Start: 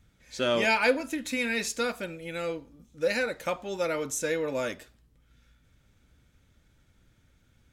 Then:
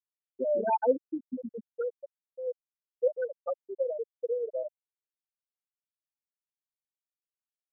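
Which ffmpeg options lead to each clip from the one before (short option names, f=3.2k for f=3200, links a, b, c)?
-af "equalizer=f=1k:t=o:w=1:g=5,equalizer=f=2k:t=o:w=1:g=-12,equalizer=f=4k:t=o:w=1:g=4,afftfilt=real='re*gte(hypot(re,im),0.251)':imag='im*gte(hypot(re,im),0.251)':win_size=1024:overlap=0.75"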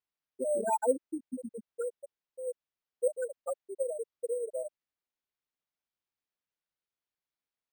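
-af "acrusher=samples=5:mix=1:aa=0.000001,volume=-2.5dB"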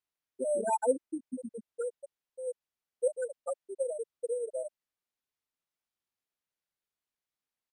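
-af "aresample=32000,aresample=44100"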